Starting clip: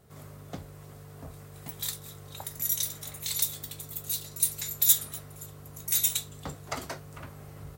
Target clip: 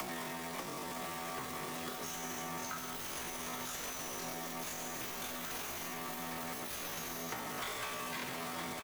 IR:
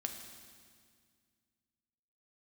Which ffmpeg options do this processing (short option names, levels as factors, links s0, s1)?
-filter_complex "[1:a]atrim=start_sample=2205,afade=t=out:st=0.34:d=0.01,atrim=end_sample=15435[s0];[0:a][s0]afir=irnorm=-1:irlink=0,acompressor=mode=upward:threshold=0.0224:ratio=2.5,asetrate=73206,aresample=44100,adynamicequalizer=threshold=0.00141:dfrequency=110:dqfactor=1.7:tfrequency=110:tqfactor=1.7:attack=5:release=100:ratio=0.375:range=2:mode=cutabove:tftype=bell,asplit=2[s1][s2];[s2]highpass=f=720:p=1,volume=39.8,asoftclip=type=tanh:threshold=0.316[s3];[s1][s3]amix=inputs=2:normalize=0,lowpass=f=2300:p=1,volume=0.501,acrusher=bits=6:dc=4:mix=0:aa=0.000001,acrossover=split=160|3400[s4][s5][s6];[s4]acompressor=threshold=0.00224:ratio=4[s7];[s5]acompressor=threshold=0.0126:ratio=4[s8];[s6]acompressor=threshold=0.01:ratio=4[s9];[s7][s8][s9]amix=inputs=3:normalize=0,atempo=0.53,aecho=1:1:963:0.422,volume=0.562"